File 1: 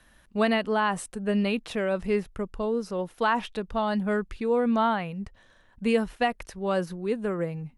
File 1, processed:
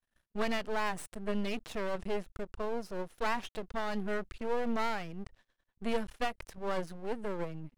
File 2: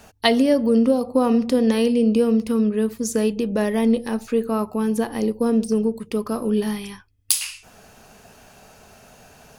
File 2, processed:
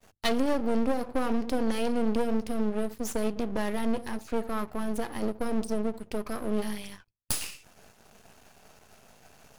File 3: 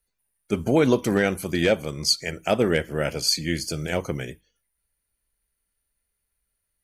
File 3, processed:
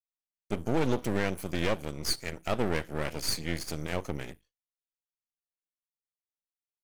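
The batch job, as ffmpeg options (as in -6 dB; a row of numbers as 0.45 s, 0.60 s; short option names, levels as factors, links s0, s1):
-af "aeval=exprs='max(val(0),0)':c=same,agate=range=0.0224:threshold=0.00355:ratio=3:detection=peak,aeval=exprs='(tanh(2*val(0)+0.6)-tanh(0.6))/2':c=same"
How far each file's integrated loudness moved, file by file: -9.0 LU, -10.0 LU, -8.5 LU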